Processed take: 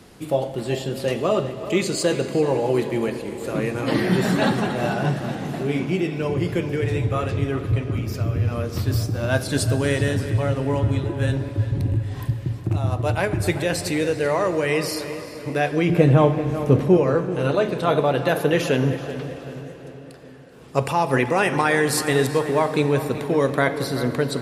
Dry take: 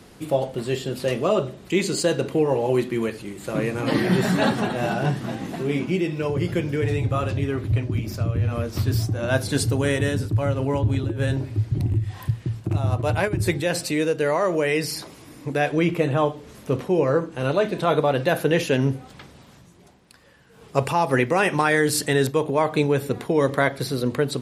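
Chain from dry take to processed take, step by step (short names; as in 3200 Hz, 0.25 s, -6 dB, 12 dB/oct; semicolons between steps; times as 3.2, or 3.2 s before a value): 15.89–16.97 low shelf 430 Hz +10.5 dB; darkening echo 0.383 s, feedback 48%, low-pass 3400 Hz, level -12.5 dB; on a send at -11 dB: reverb RT60 5.0 s, pre-delay 13 ms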